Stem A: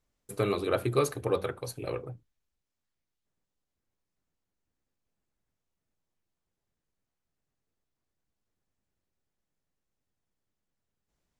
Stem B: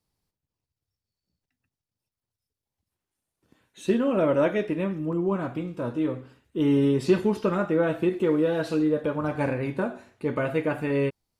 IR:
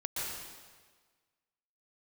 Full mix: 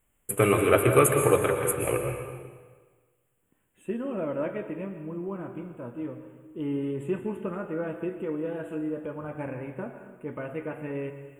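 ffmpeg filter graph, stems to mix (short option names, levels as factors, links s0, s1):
-filter_complex "[0:a]volume=1.33,asplit=2[s0][s1];[s1]volume=0.668[s2];[1:a]highshelf=f=2200:g=-11.5,volume=0.299,asplit=2[s3][s4];[s4]volume=0.316[s5];[2:a]atrim=start_sample=2205[s6];[s2][s5]amix=inputs=2:normalize=0[s7];[s7][s6]afir=irnorm=-1:irlink=0[s8];[s0][s3][s8]amix=inputs=3:normalize=0,asuperstop=centerf=4900:order=8:qfactor=1.1,highshelf=f=2600:g=10"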